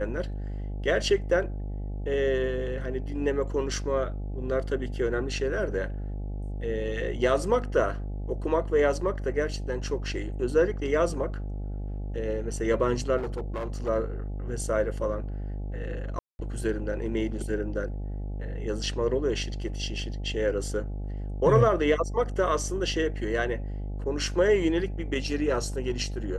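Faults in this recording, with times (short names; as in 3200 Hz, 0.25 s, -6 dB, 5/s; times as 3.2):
buzz 50 Hz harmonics 17 -33 dBFS
13.17–13.89 clipped -28 dBFS
16.19–16.39 gap 0.201 s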